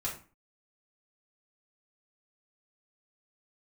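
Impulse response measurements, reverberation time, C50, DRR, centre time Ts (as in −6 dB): 0.40 s, 7.5 dB, −6.5 dB, 25 ms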